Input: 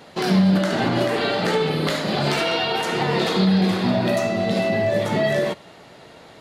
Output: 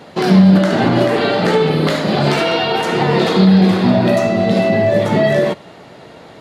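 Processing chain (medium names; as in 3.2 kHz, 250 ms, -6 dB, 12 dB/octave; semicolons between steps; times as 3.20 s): high-pass 120 Hz 6 dB/octave; tilt EQ -1.5 dB/octave; trim +6 dB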